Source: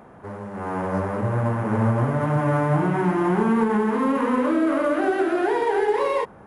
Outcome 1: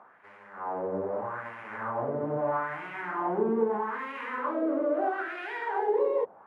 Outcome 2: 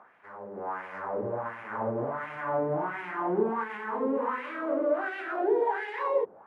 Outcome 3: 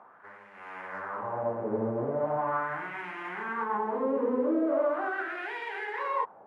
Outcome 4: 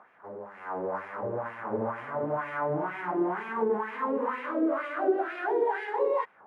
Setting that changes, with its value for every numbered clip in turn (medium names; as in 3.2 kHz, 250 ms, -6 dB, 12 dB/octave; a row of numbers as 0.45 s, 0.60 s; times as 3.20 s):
wah-wah, rate: 0.78 Hz, 1.4 Hz, 0.4 Hz, 2.1 Hz